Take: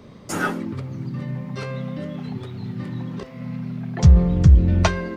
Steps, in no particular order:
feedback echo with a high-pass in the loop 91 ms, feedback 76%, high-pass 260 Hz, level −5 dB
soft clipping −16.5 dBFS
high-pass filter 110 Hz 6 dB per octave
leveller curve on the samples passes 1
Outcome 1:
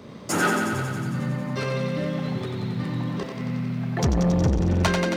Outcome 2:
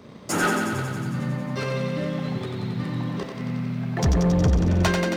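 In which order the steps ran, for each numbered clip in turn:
soft clipping, then feedback echo with a high-pass in the loop, then leveller curve on the samples, then high-pass filter
high-pass filter, then leveller curve on the samples, then soft clipping, then feedback echo with a high-pass in the loop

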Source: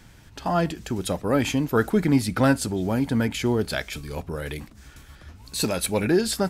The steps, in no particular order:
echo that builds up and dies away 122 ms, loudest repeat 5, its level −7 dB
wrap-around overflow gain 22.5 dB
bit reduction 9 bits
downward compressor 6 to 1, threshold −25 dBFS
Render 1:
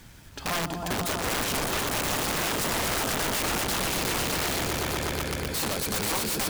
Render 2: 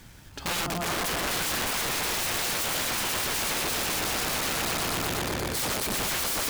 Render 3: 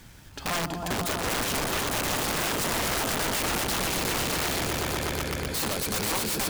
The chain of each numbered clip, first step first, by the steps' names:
downward compressor, then bit reduction, then echo that builds up and dies away, then wrap-around overflow
echo that builds up and dies away, then bit reduction, then wrap-around overflow, then downward compressor
downward compressor, then echo that builds up and dies away, then wrap-around overflow, then bit reduction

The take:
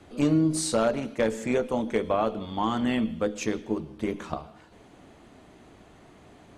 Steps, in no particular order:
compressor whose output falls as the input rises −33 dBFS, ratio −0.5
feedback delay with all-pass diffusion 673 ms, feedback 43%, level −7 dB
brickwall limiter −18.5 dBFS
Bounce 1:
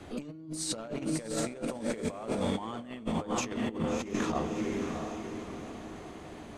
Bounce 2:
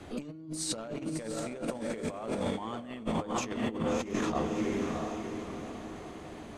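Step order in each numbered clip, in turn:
brickwall limiter, then feedback delay with all-pass diffusion, then compressor whose output falls as the input rises
feedback delay with all-pass diffusion, then brickwall limiter, then compressor whose output falls as the input rises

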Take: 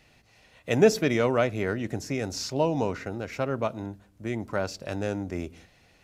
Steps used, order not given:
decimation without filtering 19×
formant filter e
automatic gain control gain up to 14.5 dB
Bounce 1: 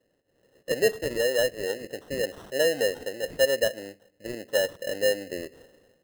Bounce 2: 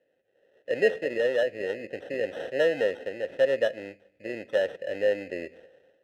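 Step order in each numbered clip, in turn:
automatic gain control, then formant filter, then decimation without filtering
automatic gain control, then decimation without filtering, then formant filter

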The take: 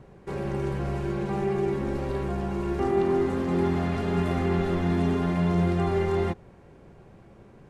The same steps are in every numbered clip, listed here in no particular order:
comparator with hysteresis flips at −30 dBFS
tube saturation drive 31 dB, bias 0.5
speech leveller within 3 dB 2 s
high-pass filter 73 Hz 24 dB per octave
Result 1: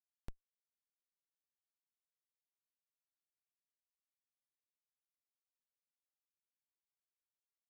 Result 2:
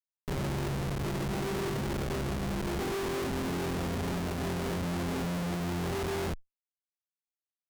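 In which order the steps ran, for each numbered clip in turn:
high-pass filter, then tube saturation, then comparator with hysteresis, then speech leveller
high-pass filter, then comparator with hysteresis, then speech leveller, then tube saturation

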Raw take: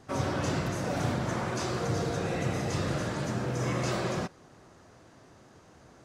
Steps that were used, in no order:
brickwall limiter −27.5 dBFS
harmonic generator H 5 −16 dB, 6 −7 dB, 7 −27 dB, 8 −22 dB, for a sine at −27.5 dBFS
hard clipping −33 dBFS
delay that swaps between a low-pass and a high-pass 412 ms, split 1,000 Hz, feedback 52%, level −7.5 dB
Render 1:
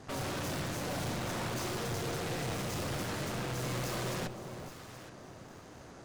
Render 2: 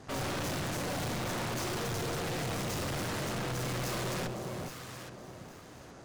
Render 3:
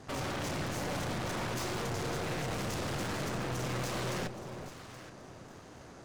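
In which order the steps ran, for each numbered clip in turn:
harmonic generator, then brickwall limiter, then hard clipping, then delay that swaps between a low-pass and a high-pass
harmonic generator, then delay that swaps between a low-pass and a high-pass, then hard clipping, then brickwall limiter
brickwall limiter, then harmonic generator, then hard clipping, then delay that swaps between a low-pass and a high-pass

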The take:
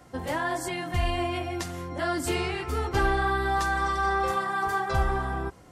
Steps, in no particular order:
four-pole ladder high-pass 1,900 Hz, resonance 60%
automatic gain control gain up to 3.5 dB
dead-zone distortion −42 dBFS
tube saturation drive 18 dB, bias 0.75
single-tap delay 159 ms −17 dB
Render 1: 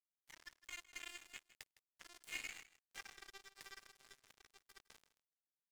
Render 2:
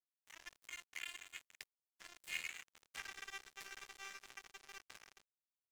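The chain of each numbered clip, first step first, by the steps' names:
four-pole ladder high-pass, then tube saturation, then dead-zone distortion, then single-tap delay, then automatic gain control
single-tap delay, then tube saturation, then four-pole ladder high-pass, then dead-zone distortion, then automatic gain control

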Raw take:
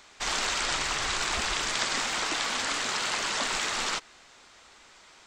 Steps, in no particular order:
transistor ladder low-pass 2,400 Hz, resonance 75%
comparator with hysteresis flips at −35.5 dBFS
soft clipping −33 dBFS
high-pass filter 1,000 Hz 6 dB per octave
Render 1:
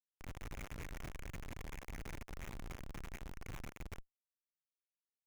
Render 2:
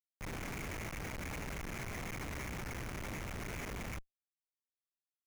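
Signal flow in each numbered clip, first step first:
high-pass filter, then soft clipping, then transistor ladder low-pass, then comparator with hysteresis
transistor ladder low-pass, then soft clipping, then high-pass filter, then comparator with hysteresis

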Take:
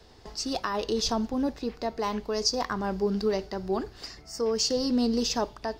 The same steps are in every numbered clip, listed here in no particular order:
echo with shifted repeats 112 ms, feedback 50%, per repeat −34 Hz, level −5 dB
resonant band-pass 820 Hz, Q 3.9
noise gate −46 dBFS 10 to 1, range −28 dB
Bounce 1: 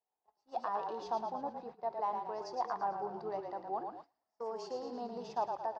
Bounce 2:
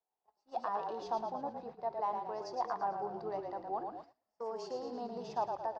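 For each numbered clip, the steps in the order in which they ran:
echo with shifted repeats, then resonant band-pass, then noise gate
resonant band-pass, then echo with shifted repeats, then noise gate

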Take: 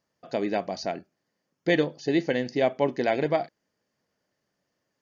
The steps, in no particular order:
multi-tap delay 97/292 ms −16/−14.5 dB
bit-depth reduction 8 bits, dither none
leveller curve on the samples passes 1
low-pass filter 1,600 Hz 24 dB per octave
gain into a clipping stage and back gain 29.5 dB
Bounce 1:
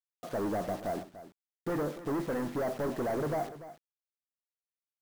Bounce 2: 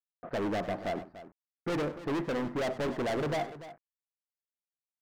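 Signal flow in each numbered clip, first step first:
gain into a clipping stage and back, then leveller curve on the samples, then low-pass filter, then bit-depth reduction, then multi-tap delay
bit-depth reduction, then leveller curve on the samples, then low-pass filter, then gain into a clipping stage and back, then multi-tap delay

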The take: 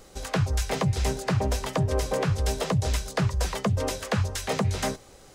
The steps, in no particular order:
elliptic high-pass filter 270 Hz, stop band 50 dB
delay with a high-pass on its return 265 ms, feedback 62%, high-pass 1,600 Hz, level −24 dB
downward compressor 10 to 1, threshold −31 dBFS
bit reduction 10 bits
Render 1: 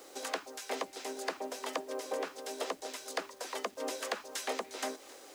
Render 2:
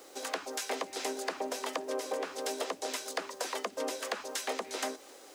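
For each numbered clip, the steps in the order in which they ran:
delay with a high-pass on its return, then downward compressor, then elliptic high-pass filter, then bit reduction
elliptic high-pass filter, then bit reduction, then downward compressor, then delay with a high-pass on its return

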